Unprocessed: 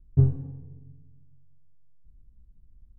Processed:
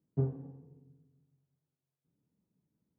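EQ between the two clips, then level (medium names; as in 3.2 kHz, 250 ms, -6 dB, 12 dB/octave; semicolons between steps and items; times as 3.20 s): high-pass 150 Hz 24 dB/octave; peaking EQ 610 Hz +7.5 dB 2.5 oct; -7.5 dB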